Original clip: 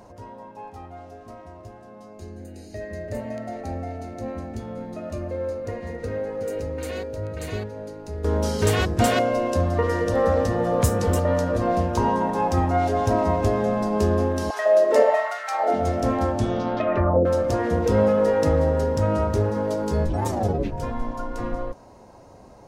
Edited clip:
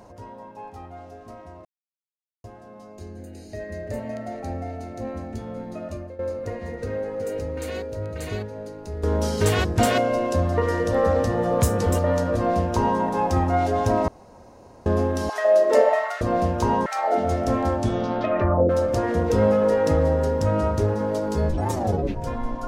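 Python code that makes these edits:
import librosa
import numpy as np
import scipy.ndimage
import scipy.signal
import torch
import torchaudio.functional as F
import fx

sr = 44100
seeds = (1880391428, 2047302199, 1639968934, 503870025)

y = fx.edit(x, sr, fx.insert_silence(at_s=1.65, length_s=0.79),
    fx.fade_out_to(start_s=5.05, length_s=0.35, floor_db=-14.5),
    fx.duplicate(start_s=11.56, length_s=0.65, to_s=15.42),
    fx.room_tone_fill(start_s=13.29, length_s=0.78), tone=tone)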